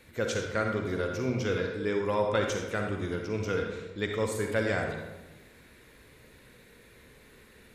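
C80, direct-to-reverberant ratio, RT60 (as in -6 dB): 5.5 dB, 2.0 dB, 1.1 s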